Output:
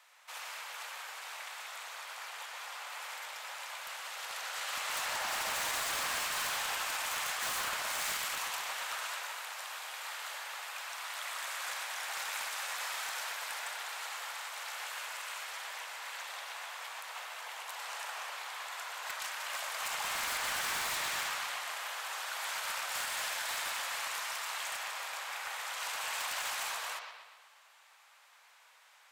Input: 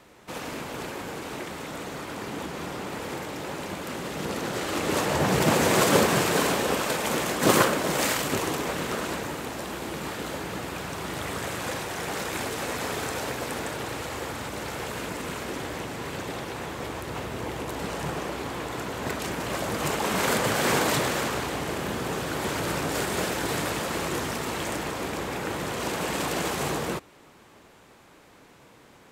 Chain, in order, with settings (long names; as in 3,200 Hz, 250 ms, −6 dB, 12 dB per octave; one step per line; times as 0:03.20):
Bessel high-pass filter 1,200 Hz, order 8
brickwall limiter −19.5 dBFS, peak gain reduction 8 dB
wave folding −26 dBFS
on a send: bucket-brigade delay 122 ms, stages 4,096, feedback 53%, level −6.5 dB
on the sum: level −4 dB